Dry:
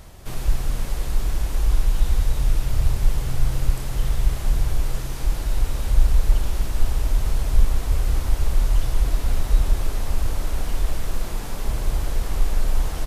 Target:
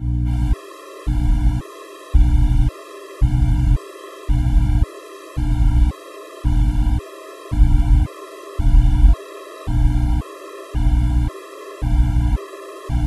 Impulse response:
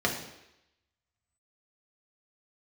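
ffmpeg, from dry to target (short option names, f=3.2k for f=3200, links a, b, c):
-filter_complex "[0:a]aeval=exprs='val(0)+0.0398*(sin(2*PI*60*n/s)+sin(2*PI*2*60*n/s)/2+sin(2*PI*3*60*n/s)/3+sin(2*PI*4*60*n/s)/4+sin(2*PI*5*60*n/s)/5)':c=same[a];[1:a]atrim=start_sample=2205,asetrate=24696,aresample=44100[b];[a][b]afir=irnorm=-1:irlink=0,afftfilt=real='re*gt(sin(2*PI*0.93*pts/sr)*(1-2*mod(floor(b*sr/1024/340),2)),0)':imag='im*gt(sin(2*PI*0.93*pts/sr)*(1-2*mod(floor(b*sr/1024/340),2)),0)':win_size=1024:overlap=0.75,volume=-10dB"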